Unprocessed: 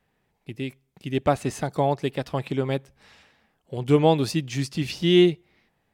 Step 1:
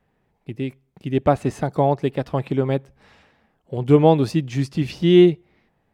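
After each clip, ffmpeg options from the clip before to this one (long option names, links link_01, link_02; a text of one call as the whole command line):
ffmpeg -i in.wav -af "highshelf=frequency=2100:gain=-11,volume=5dB" out.wav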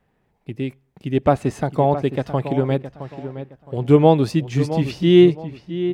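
ffmpeg -i in.wav -filter_complex "[0:a]asplit=2[link_01][link_02];[link_02]adelay=666,lowpass=frequency=2800:poles=1,volume=-11.5dB,asplit=2[link_03][link_04];[link_04]adelay=666,lowpass=frequency=2800:poles=1,volume=0.29,asplit=2[link_05][link_06];[link_06]adelay=666,lowpass=frequency=2800:poles=1,volume=0.29[link_07];[link_01][link_03][link_05][link_07]amix=inputs=4:normalize=0,volume=1dB" out.wav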